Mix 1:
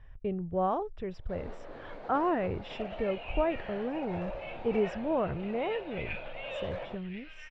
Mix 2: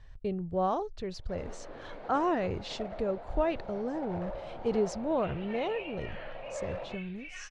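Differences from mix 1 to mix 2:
speech: remove polynomial smoothing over 25 samples; second sound: entry +2.50 s

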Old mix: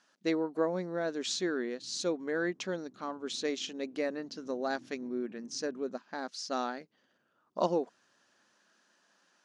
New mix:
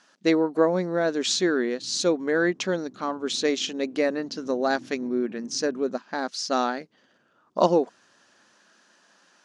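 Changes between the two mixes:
speech +9.5 dB; background +10.0 dB

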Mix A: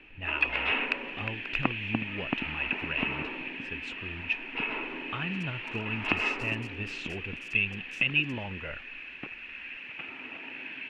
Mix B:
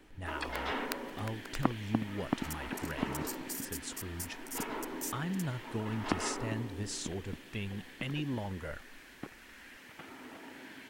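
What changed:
second sound: entry -2.90 s; master: remove synth low-pass 2600 Hz, resonance Q 15

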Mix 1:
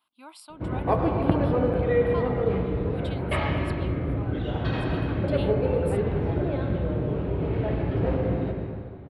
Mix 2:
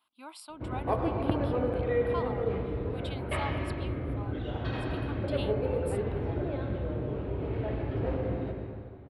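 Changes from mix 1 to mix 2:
background -5.5 dB; master: add bell 170 Hz -10.5 dB 0.24 oct

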